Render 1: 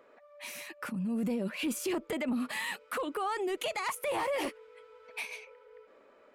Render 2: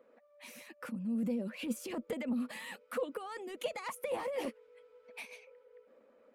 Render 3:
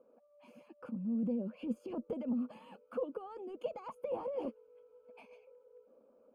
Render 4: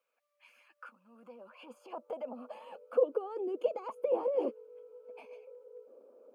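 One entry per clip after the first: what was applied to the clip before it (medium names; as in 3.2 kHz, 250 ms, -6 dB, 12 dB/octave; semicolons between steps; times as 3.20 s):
harmonic-percussive split harmonic -7 dB; small resonant body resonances 230/500 Hz, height 13 dB, ringing for 45 ms; trim -7 dB
boxcar filter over 23 samples
high-pass sweep 2.3 kHz -> 380 Hz, 0.03–3.39 s; trim +2.5 dB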